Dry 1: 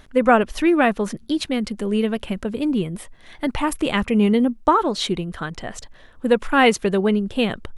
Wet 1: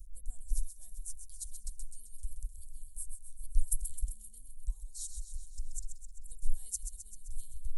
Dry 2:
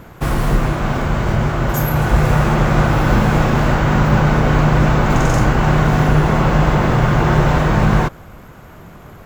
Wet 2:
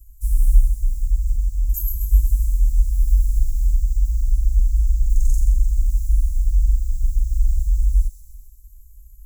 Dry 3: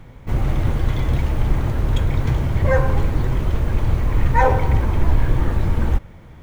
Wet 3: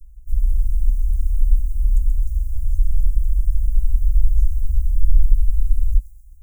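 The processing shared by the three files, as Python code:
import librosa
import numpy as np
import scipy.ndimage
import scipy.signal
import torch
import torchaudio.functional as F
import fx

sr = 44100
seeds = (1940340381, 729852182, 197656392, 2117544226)

p1 = scipy.signal.sosfilt(scipy.signal.cheby2(4, 60, [160.0, 2700.0], 'bandstop', fs=sr, output='sos'), x)
p2 = fx.low_shelf(p1, sr, hz=170.0, db=7.0)
p3 = p2 + fx.echo_wet_highpass(p2, sr, ms=130, feedback_pct=62, hz=2200.0, wet_db=-8, dry=0)
y = F.gain(torch.from_numpy(p3), -1.0).numpy()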